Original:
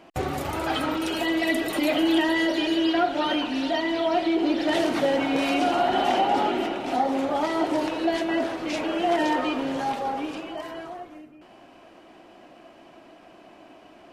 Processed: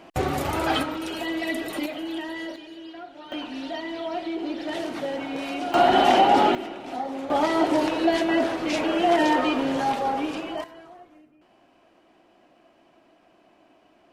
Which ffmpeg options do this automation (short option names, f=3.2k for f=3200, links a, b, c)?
-af "asetnsamples=n=441:p=0,asendcmd='0.83 volume volume -4dB;1.86 volume volume -10.5dB;2.56 volume volume -18dB;3.32 volume volume -7dB;5.74 volume volume 5dB;6.55 volume volume -7dB;7.3 volume volume 3dB;10.64 volume volume -9dB',volume=3dB"